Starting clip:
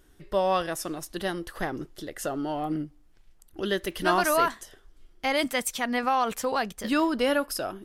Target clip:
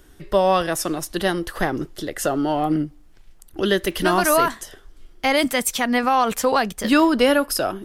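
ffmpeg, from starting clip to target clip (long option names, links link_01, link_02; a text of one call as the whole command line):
ffmpeg -i in.wav -filter_complex "[0:a]deesser=0.35,acrossover=split=320|7100[link_01][link_02][link_03];[link_02]alimiter=limit=-17.5dB:level=0:latency=1:release=248[link_04];[link_01][link_04][link_03]amix=inputs=3:normalize=0,volume=9dB" out.wav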